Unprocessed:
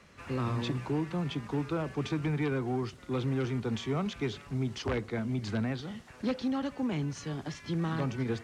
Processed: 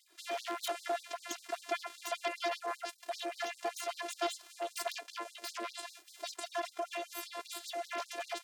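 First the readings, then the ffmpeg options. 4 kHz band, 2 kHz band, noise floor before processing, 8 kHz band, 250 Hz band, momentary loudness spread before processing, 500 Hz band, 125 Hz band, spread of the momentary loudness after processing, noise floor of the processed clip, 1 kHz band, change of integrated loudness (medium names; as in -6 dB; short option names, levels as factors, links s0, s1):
+1.5 dB, 0.0 dB, -52 dBFS, +6.5 dB, -19.0 dB, 5 LU, -4.0 dB, under -40 dB, 6 LU, -62 dBFS, +2.0 dB, -6.0 dB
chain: -filter_complex "[0:a]highshelf=f=6000:g=8,asplit=2[s0][s1];[s1]acompressor=threshold=0.00631:ratio=6,volume=0.841[s2];[s0][s2]amix=inputs=2:normalize=0,afftfilt=real='hypot(re,im)*cos(PI*b)':imag='0':win_size=512:overlap=0.75,aeval=exprs='0.106*(cos(1*acos(clip(val(0)/0.106,-1,1)))-cos(1*PI/2))+0.0075*(cos(3*acos(clip(val(0)/0.106,-1,1)))-cos(3*PI/2))+0.0422*(cos(4*acos(clip(val(0)/0.106,-1,1)))-cos(4*PI/2))+0.0299*(cos(8*acos(clip(val(0)/0.106,-1,1)))-cos(8*PI/2))':c=same,afftfilt=real='re*gte(b*sr/1024,250*pow(3900/250,0.5+0.5*sin(2*PI*5.1*pts/sr)))':imag='im*gte(b*sr/1024,250*pow(3900/250,0.5+0.5*sin(2*PI*5.1*pts/sr)))':win_size=1024:overlap=0.75,volume=0.891"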